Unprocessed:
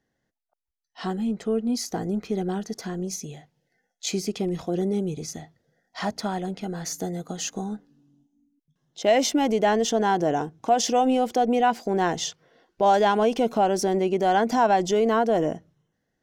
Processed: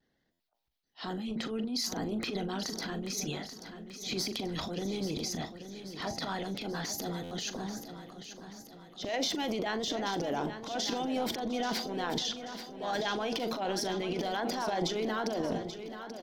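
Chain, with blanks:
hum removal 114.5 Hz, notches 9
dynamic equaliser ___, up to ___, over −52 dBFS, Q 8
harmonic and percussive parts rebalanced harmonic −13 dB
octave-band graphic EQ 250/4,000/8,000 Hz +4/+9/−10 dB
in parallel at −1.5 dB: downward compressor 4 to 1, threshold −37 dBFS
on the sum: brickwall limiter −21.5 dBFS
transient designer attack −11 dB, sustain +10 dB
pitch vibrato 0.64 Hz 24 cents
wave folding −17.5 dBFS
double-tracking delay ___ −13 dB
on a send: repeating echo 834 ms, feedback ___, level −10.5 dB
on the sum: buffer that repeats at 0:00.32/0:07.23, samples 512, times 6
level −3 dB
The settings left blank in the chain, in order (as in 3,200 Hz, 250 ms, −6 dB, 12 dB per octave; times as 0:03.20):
2,800 Hz, −5 dB, 41 ms, 52%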